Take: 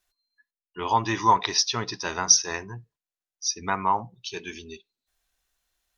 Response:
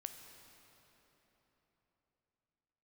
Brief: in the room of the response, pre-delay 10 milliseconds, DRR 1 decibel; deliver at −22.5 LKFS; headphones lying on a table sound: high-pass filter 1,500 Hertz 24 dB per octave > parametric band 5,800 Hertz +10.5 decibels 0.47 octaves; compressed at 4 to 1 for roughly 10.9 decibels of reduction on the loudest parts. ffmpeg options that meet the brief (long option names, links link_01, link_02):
-filter_complex "[0:a]acompressor=threshold=-26dB:ratio=4,asplit=2[link_01][link_02];[1:a]atrim=start_sample=2205,adelay=10[link_03];[link_02][link_03]afir=irnorm=-1:irlink=0,volume=2.5dB[link_04];[link_01][link_04]amix=inputs=2:normalize=0,highpass=frequency=1500:width=0.5412,highpass=frequency=1500:width=1.3066,equalizer=frequency=5800:width_type=o:width=0.47:gain=10.5"